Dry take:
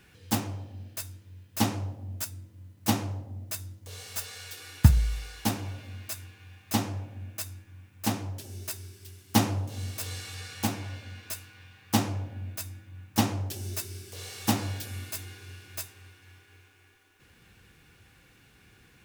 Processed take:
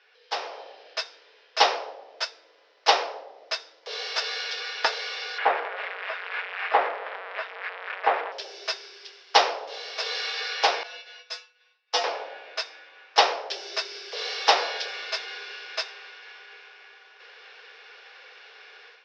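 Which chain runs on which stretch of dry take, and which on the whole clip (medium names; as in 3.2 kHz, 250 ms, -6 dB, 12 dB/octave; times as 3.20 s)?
5.38–8.32 s: zero-crossing glitches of -17.5 dBFS + low-pass 2 kHz 24 dB/octave
10.83–12.04 s: expander -42 dBFS + treble shelf 5.7 kHz +10.5 dB + feedback comb 99 Hz, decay 0.18 s, harmonics odd, mix 90%
whole clip: Chebyshev band-pass 430–5400 Hz, order 5; level rider gain up to 14 dB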